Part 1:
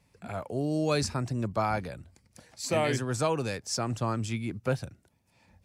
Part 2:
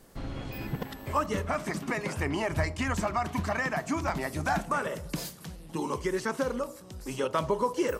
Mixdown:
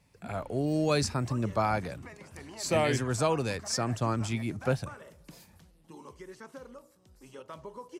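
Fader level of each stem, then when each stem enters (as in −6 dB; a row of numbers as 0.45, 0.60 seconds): +0.5, −16.5 decibels; 0.00, 0.15 seconds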